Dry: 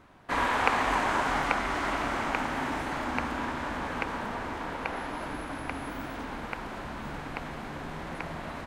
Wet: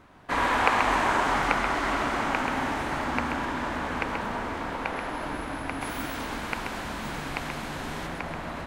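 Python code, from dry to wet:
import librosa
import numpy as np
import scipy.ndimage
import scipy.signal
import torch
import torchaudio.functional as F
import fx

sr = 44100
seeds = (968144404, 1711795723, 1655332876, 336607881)

y = fx.high_shelf(x, sr, hz=2900.0, db=10.0, at=(5.81, 8.07))
y = y + 10.0 ** (-6.0 / 20.0) * np.pad(y, (int(132 * sr / 1000.0), 0))[:len(y)]
y = F.gain(torch.from_numpy(y), 2.0).numpy()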